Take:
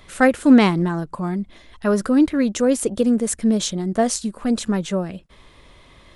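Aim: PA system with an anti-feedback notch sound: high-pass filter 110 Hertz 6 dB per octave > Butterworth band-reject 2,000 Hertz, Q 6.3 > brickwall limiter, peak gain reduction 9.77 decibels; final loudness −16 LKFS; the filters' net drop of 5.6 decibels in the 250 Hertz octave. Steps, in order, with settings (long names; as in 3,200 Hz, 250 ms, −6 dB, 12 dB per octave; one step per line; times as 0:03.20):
high-pass filter 110 Hz 6 dB per octave
Butterworth band-reject 2,000 Hz, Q 6.3
parametric band 250 Hz −5.5 dB
level +9.5 dB
brickwall limiter −5.5 dBFS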